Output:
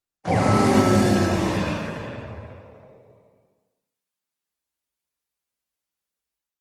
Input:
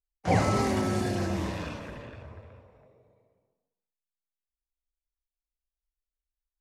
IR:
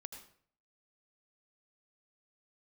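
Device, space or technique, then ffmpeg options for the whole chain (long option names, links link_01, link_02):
far-field microphone of a smart speaker: -filter_complex "[1:a]atrim=start_sample=2205[link_01];[0:a][link_01]afir=irnorm=-1:irlink=0,highpass=frequency=90:width=0.5412,highpass=frequency=90:width=1.3066,dynaudnorm=framelen=350:gausssize=3:maxgain=7dB,volume=7.5dB" -ar 48000 -c:a libopus -b:a 24k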